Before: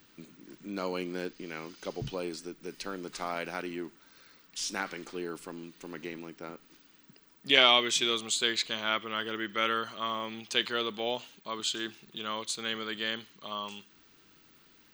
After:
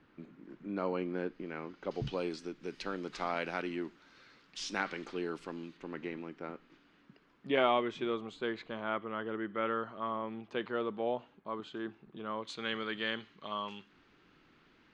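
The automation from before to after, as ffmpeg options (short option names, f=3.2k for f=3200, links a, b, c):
-af "asetnsamples=n=441:p=0,asendcmd='1.91 lowpass f 4000;5.77 lowpass f 2400;7.47 lowpass f 1100;12.45 lowpass f 2600',lowpass=1.7k"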